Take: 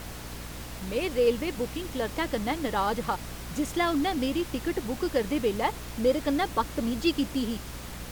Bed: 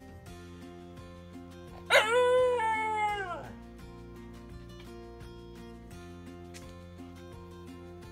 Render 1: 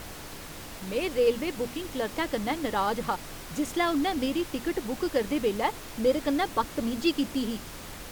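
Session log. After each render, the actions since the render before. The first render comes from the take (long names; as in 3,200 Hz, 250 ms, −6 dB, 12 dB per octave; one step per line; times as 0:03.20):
mains-hum notches 60/120/180/240 Hz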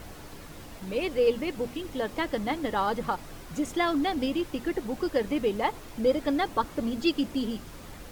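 broadband denoise 7 dB, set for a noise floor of −42 dBFS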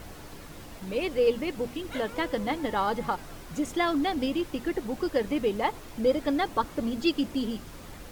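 mix in bed −18 dB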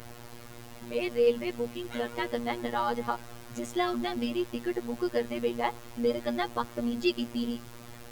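phases set to zero 119 Hz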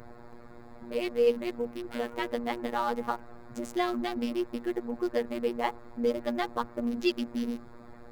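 adaptive Wiener filter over 15 samples
mains-hum notches 60/120 Hz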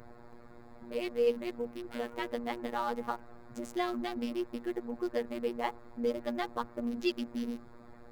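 level −4 dB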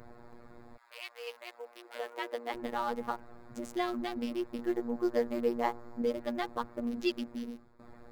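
0:00.76–0:02.53: high-pass filter 1,100 Hz → 310 Hz 24 dB per octave
0:04.57–0:06.02: double-tracking delay 17 ms −3 dB
0:07.15–0:07.79: fade out, to −13.5 dB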